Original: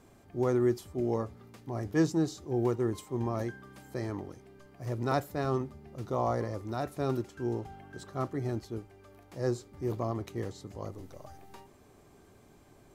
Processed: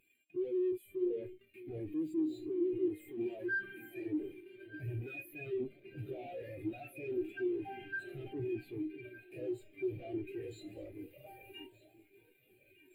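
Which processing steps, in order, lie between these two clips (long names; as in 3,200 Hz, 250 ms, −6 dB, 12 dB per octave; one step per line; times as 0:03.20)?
high-pass filter 88 Hz 24 dB per octave
parametric band 2,500 Hz +9.5 dB 0.27 octaves
harmonic and percussive parts rebalanced harmonic +9 dB
spectral tilt +4.5 dB per octave
in parallel at −2 dB: downward compressor, threshold −36 dBFS, peak gain reduction 15.5 dB
on the sum: fuzz pedal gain 46 dB, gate −42 dBFS
phaser with its sweep stopped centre 2,500 Hz, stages 4
tuned comb filter 310 Hz, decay 0.56 s, mix 70%
soft clipping −35.5 dBFS, distortion −7 dB
delay that swaps between a low-pass and a high-pass 606 ms, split 880 Hz, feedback 80%, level −7 dB
every bin expanded away from the loudest bin 2.5 to 1
level +2 dB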